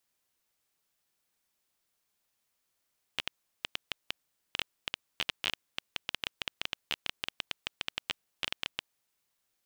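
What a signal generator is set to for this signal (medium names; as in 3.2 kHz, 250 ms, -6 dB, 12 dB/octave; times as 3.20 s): random clicks 9.8 per s -13 dBFS 5.80 s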